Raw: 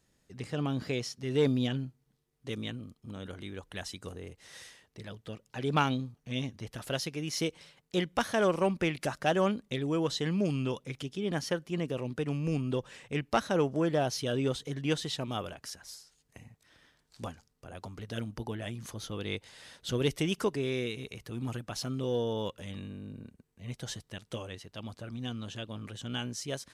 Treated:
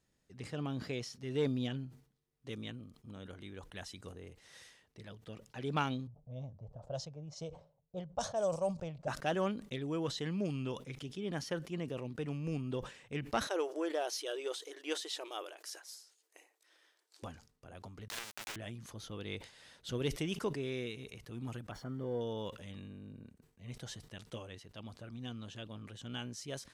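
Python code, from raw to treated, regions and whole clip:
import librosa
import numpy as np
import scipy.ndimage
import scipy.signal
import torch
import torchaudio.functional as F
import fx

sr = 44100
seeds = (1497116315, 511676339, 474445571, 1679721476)

y = fx.chain(x, sr, fx.curve_eq(hz=(150.0, 230.0, 350.0, 600.0, 2000.0, 3300.0, 7600.0, 11000.0), db=(0, -11, -15, 5, -20, -9, 10, -2)),
    fx.env_lowpass(base_hz=520.0, full_db=-23.5), at=(6.07, 9.08))
y = fx.chain(y, sr, fx.brickwall_highpass(low_hz=300.0),
    fx.high_shelf(hz=5600.0, db=7.5), at=(13.47, 17.23))
y = fx.chain(y, sr, fx.halfwave_hold(),
    fx.highpass(hz=1400.0, slope=12),
    fx.quant_companded(bits=2), at=(18.08, 18.56))
y = fx.chain(y, sr, fx.crossing_spikes(level_db=-32.0),
    fx.savgol(points=41), at=(21.71, 22.21))
y = fx.high_shelf(y, sr, hz=9600.0, db=-4.0)
y = fx.sustainer(y, sr, db_per_s=130.0)
y = y * 10.0 ** (-6.5 / 20.0)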